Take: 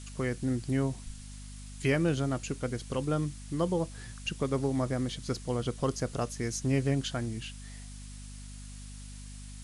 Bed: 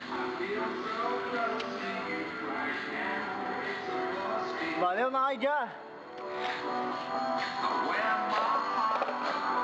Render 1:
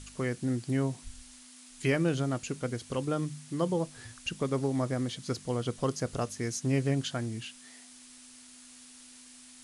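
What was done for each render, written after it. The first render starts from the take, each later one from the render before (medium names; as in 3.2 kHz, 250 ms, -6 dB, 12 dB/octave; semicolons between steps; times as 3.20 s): de-hum 50 Hz, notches 4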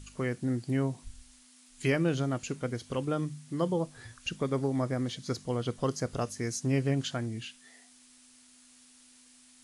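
noise print and reduce 6 dB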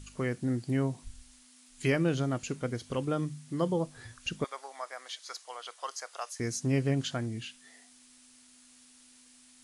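4.44–6.40 s: high-pass 750 Hz 24 dB/octave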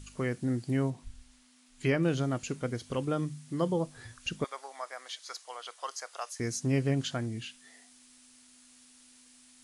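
0.90–2.03 s: treble shelf 5.3 kHz -9.5 dB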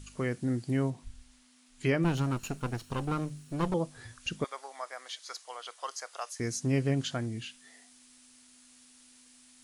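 2.04–3.74 s: comb filter that takes the minimum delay 0.73 ms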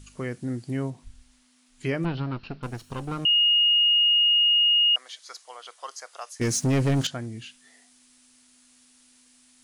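2.05–2.63 s: steep low-pass 5 kHz 72 dB/octave; 3.25–4.96 s: bleep 2.86 kHz -16.5 dBFS; 6.41–7.07 s: waveshaping leveller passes 3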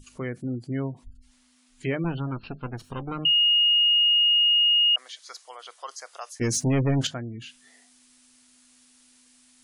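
hum notches 50/100/150/200 Hz; spectral gate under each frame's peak -30 dB strong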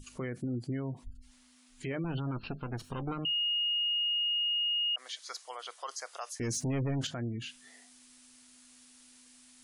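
compression, threshold -24 dBFS, peak gain reduction 5.5 dB; peak limiter -27.5 dBFS, peak gain reduction 9.5 dB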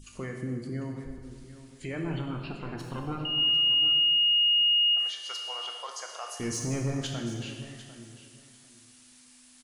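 feedback delay 748 ms, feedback 18%, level -14.5 dB; plate-style reverb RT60 1.7 s, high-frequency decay 0.9×, DRR 1.5 dB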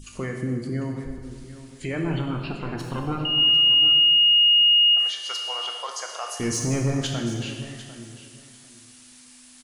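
trim +6.5 dB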